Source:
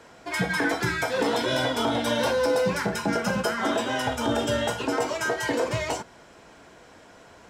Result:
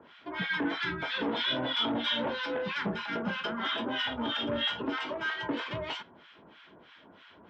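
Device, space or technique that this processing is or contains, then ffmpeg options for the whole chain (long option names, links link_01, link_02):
guitar amplifier with harmonic tremolo: -filter_complex "[0:a]acrossover=split=1100[link_01][link_02];[link_01]aeval=exprs='val(0)*(1-1/2+1/2*cos(2*PI*3.1*n/s))':channel_layout=same[link_03];[link_02]aeval=exprs='val(0)*(1-1/2-1/2*cos(2*PI*3.1*n/s))':channel_layout=same[link_04];[link_03][link_04]amix=inputs=2:normalize=0,asoftclip=type=tanh:threshold=-23.5dB,highpass=110,equalizer=frequency=120:width_type=q:width=4:gain=-7,equalizer=frequency=490:width_type=q:width=4:gain=-7,equalizer=frequency=720:width_type=q:width=4:gain=-7,equalizer=frequency=3300:width_type=q:width=4:gain=9,lowpass=frequency=3600:width=0.5412,lowpass=frequency=3600:width=1.3066,volume=1.5dB"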